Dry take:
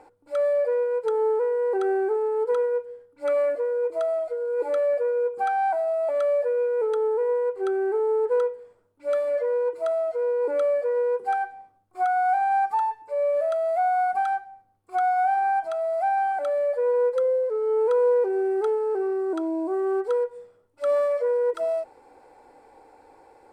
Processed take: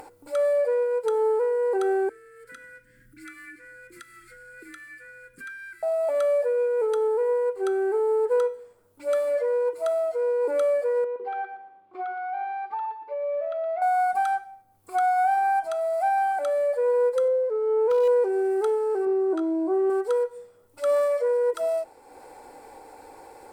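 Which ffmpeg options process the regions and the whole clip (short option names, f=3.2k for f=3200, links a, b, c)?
-filter_complex "[0:a]asettb=1/sr,asplit=3[a][b][c];[a]atrim=end=2.094[d];[b]atrim=start=2.09:end=5.83,asetpts=PTS-STARTPTS,afade=t=in:d=0.004:c=qsin,afade=t=out:st=3.736:d=0.004:c=qsin,highshelf=f=2.2k:t=q:w=1.5:g=-8.5,afreqshift=22,asuperstop=centerf=710:order=8:qfactor=0.5[e];[c]atrim=start=5.826[f];[d][e]acrossfade=d=0.004:c1=hsin:c2=qsin[g];[g][f]acrossfade=d=0.004:c1=qsin:c2=hsin,asettb=1/sr,asplit=3[h][i][j];[h]atrim=end=11.044[k];[i]atrim=start=11.04:end=13.82,asetpts=PTS-STARTPTS,afade=t=in:d=0.004:c=qsin,afade=t=out:st=2.776:d=0.004:c=qsin,highpass=250,equalizer=f=370:t=q:w=4:g=6,equalizer=f=760:t=q:w=4:g=-4,equalizer=f=1.6k:t=q:w=4:g=-5,lowpass=f=3.2k:w=0.5412,lowpass=f=3.2k:w=1.3066,acompressor=threshold=-28dB:ratio=6:attack=3.2:release=140:knee=1:detection=peak,aecho=1:1:118|236|354:0.282|0.0676|0.0162,atrim=end_sample=122598[l];[j]atrim=start=13.816[m];[k][l]acrossfade=d=0.004:c1=hsin:c2=qsin[n];[n][m]acrossfade=d=0.004:c1=qsin:c2=hsin,asettb=1/sr,asplit=3[o][p][q];[o]atrim=end=17.284[r];[p]atrim=start=17.28:end=18.08,asetpts=PTS-STARTPTS,afade=t=in:d=0.004:c=qsin,afade=t=out:st=0.796:d=0.004:c=qsin,aemphasis=mode=reproduction:type=75kf,asoftclip=type=hard:threshold=-16.5dB[s];[q]atrim=start=18.076[t];[r][s]acrossfade=d=0.004:c1=hsin:c2=qsin[u];[u][t]acrossfade=d=0.004:c1=qsin:c2=hsin,asettb=1/sr,asplit=3[v][w][x];[v]atrim=end=19.054[y];[w]atrim=start=19.05:end=19.9,asetpts=PTS-STARTPTS,afade=t=in:d=0.004:c=qsin,afade=t=out:st=0.846:d=0.004:c=qsin,aemphasis=mode=reproduction:type=75kf,asplit=2[z][aa];[aa]adelay=16,volume=-6dB[ab];[z][ab]amix=inputs=2:normalize=0,atrim=end_sample=37485[ac];[x]atrim=start=19.896[ad];[y][ac]acrossfade=d=0.004:c1=hsin:c2=qsin[ae];[ae][ad]acrossfade=d=0.004:c1=qsin:c2=hsin,aemphasis=mode=production:type=50kf,bandreject=f=333:t=h:w=4,bandreject=f=666:t=h:w=4,bandreject=f=999:t=h:w=4,bandreject=f=1.332k:t=h:w=4,bandreject=f=1.665k:t=h:w=4,bandreject=f=1.998k:t=h:w=4,bandreject=f=2.331k:t=h:w=4,bandreject=f=2.664k:t=h:w=4,bandreject=f=2.997k:t=h:w=4,bandreject=f=3.33k:t=h:w=4,bandreject=f=3.663k:t=h:w=4,bandreject=f=3.996k:t=h:w=4,bandreject=f=4.329k:t=h:w=4,bandreject=f=4.662k:t=h:w=4,bandreject=f=4.995k:t=h:w=4,bandreject=f=5.328k:t=h:w=4,bandreject=f=5.661k:t=h:w=4,bandreject=f=5.994k:t=h:w=4,bandreject=f=6.327k:t=h:w=4,bandreject=f=6.66k:t=h:w=4,bandreject=f=6.993k:t=h:w=4,bandreject=f=7.326k:t=h:w=4,bandreject=f=7.659k:t=h:w=4,bandreject=f=7.992k:t=h:w=4,bandreject=f=8.325k:t=h:w=4,bandreject=f=8.658k:t=h:w=4,bandreject=f=8.991k:t=h:w=4,bandreject=f=9.324k:t=h:w=4,bandreject=f=9.657k:t=h:w=4,bandreject=f=9.99k:t=h:w=4,bandreject=f=10.323k:t=h:w=4,bandreject=f=10.656k:t=h:w=4,bandreject=f=10.989k:t=h:w=4,bandreject=f=11.322k:t=h:w=4,bandreject=f=11.655k:t=h:w=4,bandreject=f=11.988k:t=h:w=4,acompressor=mode=upward:threshold=-38dB:ratio=2.5"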